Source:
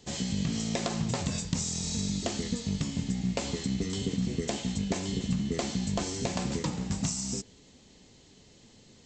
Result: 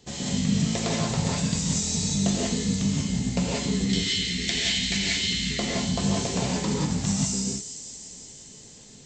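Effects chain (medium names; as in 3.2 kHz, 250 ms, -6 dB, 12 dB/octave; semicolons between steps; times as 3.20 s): 3.89–5.59 s: graphic EQ 125/250/500/1000/2000/4000 Hz -9/-4/-9/-11/+12/+10 dB; feedback echo behind a high-pass 174 ms, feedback 79%, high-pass 5.2 kHz, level -8 dB; gated-style reverb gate 210 ms rising, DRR -4 dB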